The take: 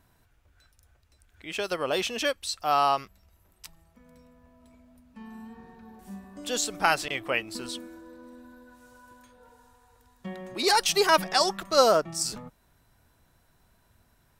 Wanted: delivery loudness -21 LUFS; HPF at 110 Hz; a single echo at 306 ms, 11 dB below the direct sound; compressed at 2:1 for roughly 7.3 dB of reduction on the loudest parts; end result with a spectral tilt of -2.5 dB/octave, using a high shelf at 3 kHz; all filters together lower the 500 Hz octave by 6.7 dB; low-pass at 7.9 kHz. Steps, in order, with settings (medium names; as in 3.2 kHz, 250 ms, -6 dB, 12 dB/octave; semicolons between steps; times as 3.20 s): high-pass 110 Hz; low-pass 7.9 kHz; peaking EQ 500 Hz -8.5 dB; treble shelf 3 kHz -6 dB; compression 2:1, threshold -33 dBFS; delay 306 ms -11 dB; trim +14.5 dB